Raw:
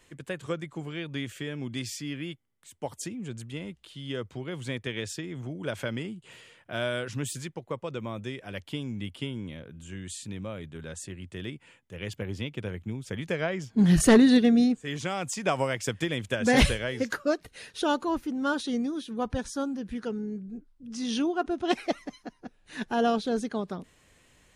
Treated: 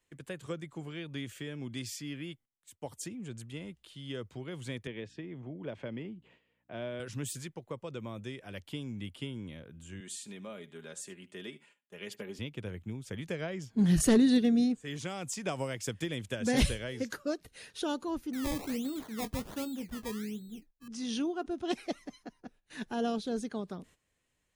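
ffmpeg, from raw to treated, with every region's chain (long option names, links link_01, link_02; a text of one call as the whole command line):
ffmpeg -i in.wav -filter_complex "[0:a]asettb=1/sr,asplit=3[link_01][link_02][link_03];[link_01]atrim=end=4.874[link_04];[link_02]atrim=start=4.87:end=7,asetpts=PTS-STARTPTS,afade=type=in:duration=0.004:curve=qsin,afade=type=out:start_time=2.126:duration=0.004:curve=qsin,equalizer=frequency=1400:width=3.1:gain=-7.5,aeval=exprs='val(0)+0.00141*(sin(2*PI*60*n/s)+sin(2*PI*2*60*n/s)/2+sin(2*PI*3*60*n/s)/3+sin(2*PI*4*60*n/s)/4+sin(2*PI*5*60*n/s)/5)':channel_layout=same,highpass=130,lowpass=2200[link_05];[link_03]atrim=start=6.996[link_06];[link_04][link_05]acrossfade=duration=0.004:curve1=hsin:curve2=qsin[link_07];[link_07][link_06]acrossfade=duration=0.004:curve1=qsin:curve2=hsin,asettb=1/sr,asplit=3[link_08][link_09][link_10];[link_08]atrim=end=10.004[link_11];[link_09]atrim=start=10:end=12.39,asetpts=PTS-STARTPTS,afade=type=in:duration=0.004:curve=qsin,afade=type=out:start_time=2.386:duration=0.004:curve=qsin,highpass=260,aecho=1:1:4.9:0.55,atrim=end_sample=105399,aecho=1:1:74:0.112,atrim=end_sample=105399[link_12];[link_10]atrim=start=12.386[link_13];[link_11][link_12]acrossfade=duration=0.004:curve1=hsin:curve2=qsin[link_14];[link_14][link_13]acrossfade=duration=0.004:curve1=qsin:curve2=hsin,asettb=1/sr,asplit=3[link_15][link_16][link_17];[link_15]atrim=end=18.334[link_18];[link_16]atrim=start=18.33:end=20.88,asetpts=PTS-STARTPTS,afade=type=in:duration=0.004:curve=qsin,afade=type=out:start_time=2.546:duration=0.004:curve=qsin,acrusher=samples=21:mix=1:aa=0.000001:lfo=1:lforange=21:lforate=1.3,asplit=2[link_19][link_20];[link_20]adelay=23,volume=-13dB[link_21];[link_19][link_21]amix=inputs=2:normalize=0,atrim=end_sample=112455[link_22];[link_17]atrim=start=20.876[link_23];[link_18][link_22]acrossfade=duration=0.004:curve1=hsin:curve2=qsin[link_24];[link_24][link_23]acrossfade=duration=0.004:curve1=qsin:curve2=hsin,agate=range=-14dB:threshold=-52dB:ratio=16:detection=peak,highshelf=frequency=11000:gain=5.5,acrossover=split=500|3000[link_25][link_26][link_27];[link_26]acompressor=threshold=-44dB:ratio=1.5[link_28];[link_25][link_28][link_27]amix=inputs=3:normalize=0,volume=-5dB" out.wav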